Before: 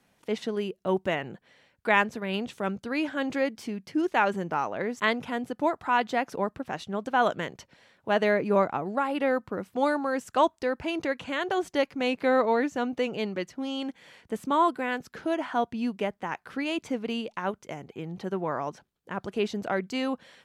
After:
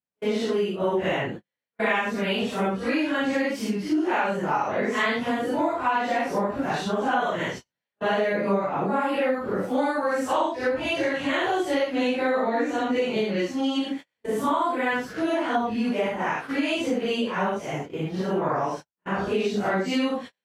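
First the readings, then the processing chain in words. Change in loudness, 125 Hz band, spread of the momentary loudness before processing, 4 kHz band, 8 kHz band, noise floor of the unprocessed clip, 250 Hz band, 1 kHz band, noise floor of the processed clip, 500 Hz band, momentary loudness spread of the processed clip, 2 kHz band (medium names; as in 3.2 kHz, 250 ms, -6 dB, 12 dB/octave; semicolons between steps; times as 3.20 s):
+3.0 dB, +5.0 dB, 10 LU, +4.5 dB, +6.0 dB, -69 dBFS, +4.0 dB, +2.5 dB, under -85 dBFS, +3.0 dB, 5 LU, +3.0 dB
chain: phase randomisation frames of 200 ms; gate -42 dBFS, range -40 dB; compression, threshold -30 dBFS, peak gain reduction 13 dB; trim +9 dB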